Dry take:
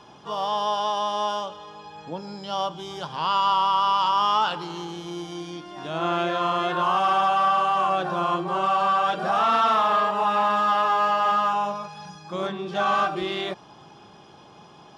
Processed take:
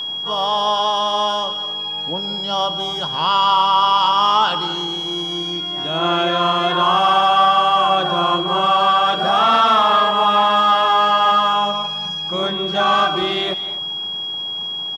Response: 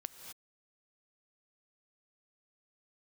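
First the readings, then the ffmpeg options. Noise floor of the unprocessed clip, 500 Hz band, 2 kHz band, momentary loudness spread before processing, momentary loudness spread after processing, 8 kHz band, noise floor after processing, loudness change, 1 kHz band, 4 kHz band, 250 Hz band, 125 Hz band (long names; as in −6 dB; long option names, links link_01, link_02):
−49 dBFS, +6.0 dB, +6.5 dB, 15 LU, 9 LU, can't be measured, −26 dBFS, +6.5 dB, +6.5 dB, +15.0 dB, +6.0 dB, +6.5 dB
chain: -filter_complex "[0:a]aresample=32000,aresample=44100,asplit=2[link_01][link_02];[1:a]atrim=start_sample=2205[link_03];[link_02][link_03]afir=irnorm=-1:irlink=0,volume=4dB[link_04];[link_01][link_04]amix=inputs=2:normalize=0,aeval=exprs='val(0)+0.0708*sin(2*PI*3300*n/s)':channel_layout=same"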